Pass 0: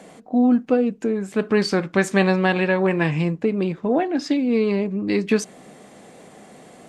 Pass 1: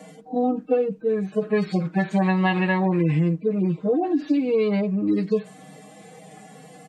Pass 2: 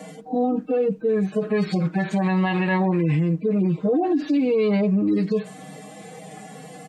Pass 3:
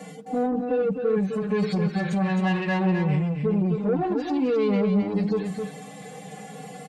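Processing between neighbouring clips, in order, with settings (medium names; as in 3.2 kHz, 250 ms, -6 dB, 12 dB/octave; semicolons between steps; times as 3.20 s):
harmonic-percussive separation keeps harmonic; comb 6.4 ms, depth 93%; compression 3:1, threshold -18 dBFS, peak gain reduction 6 dB
peak limiter -19.5 dBFS, peak gain reduction 9.5 dB; trim +5 dB
saturation -18 dBFS, distortion -17 dB; comb of notches 320 Hz; delay 263 ms -6 dB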